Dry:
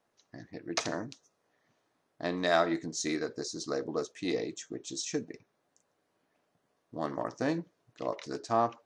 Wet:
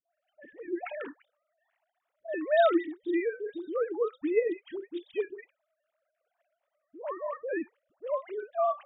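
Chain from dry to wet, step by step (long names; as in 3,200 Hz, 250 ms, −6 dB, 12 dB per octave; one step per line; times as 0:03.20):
three sine waves on the formant tracks
all-pass dispersion highs, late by 96 ms, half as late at 610 Hz
level +2.5 dB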